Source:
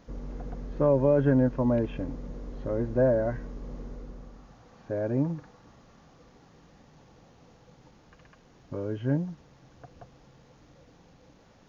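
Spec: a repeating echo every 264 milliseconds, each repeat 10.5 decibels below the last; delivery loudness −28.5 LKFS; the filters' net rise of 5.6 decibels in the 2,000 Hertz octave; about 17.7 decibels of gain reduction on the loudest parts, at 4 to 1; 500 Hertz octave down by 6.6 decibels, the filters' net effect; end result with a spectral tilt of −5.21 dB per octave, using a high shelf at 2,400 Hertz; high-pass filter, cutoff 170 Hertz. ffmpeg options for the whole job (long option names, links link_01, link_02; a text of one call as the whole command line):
ffmpeg -i in.wav -af "highpass=170,equalizer=frequency=500:width_type=o:gain=-8.5,equalizer=frequency=2000:width_type=o:gain=5,highshelf=frequency=2400:gain=8,acompressor=threshold=-44dB:ratio=4,aecho=1:1:264|528|792:0.299|0.0896|0.0269,volume=20.5dB" out.wav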